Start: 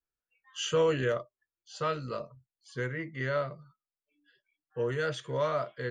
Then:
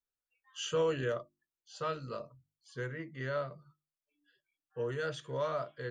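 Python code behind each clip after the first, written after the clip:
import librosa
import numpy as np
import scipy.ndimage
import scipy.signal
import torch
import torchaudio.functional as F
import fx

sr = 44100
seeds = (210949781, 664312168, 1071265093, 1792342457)

y = fx.peak_eq(x, sr, hz=2100.0, db=-6.0, octaves=0.24)
y = fx.hum_notches(y, sr, base_hz=50, count=7)
y = F.gain(torch.from_numpy(y), -4.5).numpy()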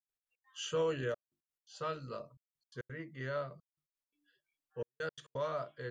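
y = fx.step_gate(x, sr, bpm=171, pattern='.x.x.xxxxxxxx.', floor_db=-60.0, edge_ms=4.5)
y = F.gain(torch.from_numpy(y), -2.5).numpy()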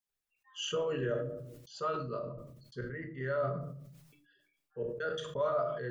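y = fx.envelope_sharpen(x, sr, power=1.5)
y = fx.room_shoebox(y, sr, seeds[0], volume_m3=480.0, walls='furnished', distance_m=1.3)
y = fx.sustainer(y, sr, db_per_s=47.0)
y = F.gain(torch.from_numpy(y), 2.5).numpy()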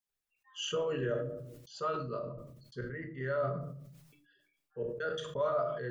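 y = x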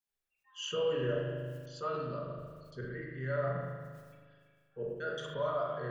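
y = fx.rev_spring(x, sr, rt60_s=1.8, pass_ms=(39,), chirp_ms=65, drr_db=0.0)
y = F.gain(torch.from_numpy(y), -3.0).numpy()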